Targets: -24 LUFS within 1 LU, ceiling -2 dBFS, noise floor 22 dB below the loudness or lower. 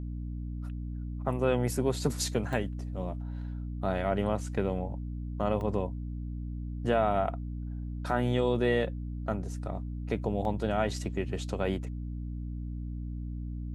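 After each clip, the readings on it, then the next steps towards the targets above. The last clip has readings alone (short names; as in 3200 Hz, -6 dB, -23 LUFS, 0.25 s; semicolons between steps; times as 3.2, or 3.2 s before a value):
dropouts 3; longest dropout 1.3 ms; hum 60 Hz; harmonics up to 300 Hz; hum level -34 dBFS; loudness -32.5 LUFS; peak -13.5 dBFS; loudness target -24.0 LUFS
-> interpolate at 2.53/5.61/10.45, 1.3 ms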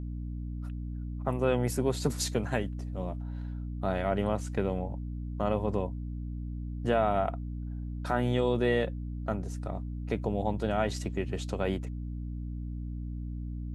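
dropouts 0; hum 60 Hz; harmonics up to 300 Hz; hum level -34 dBFS
-> notches 60/120/180/240/300 Hz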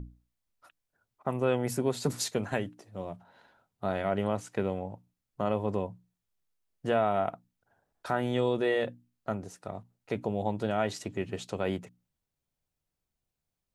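hum none; loudness -32.0 LUFS; peak -13.5 dBFS; loudness target -24.0 LUFS
-> gain +8 dB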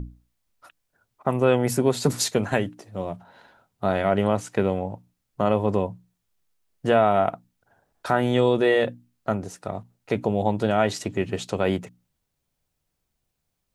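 loudness -24.0 LUFS; peak -5.5 dBFS; noise floor -78 dBFS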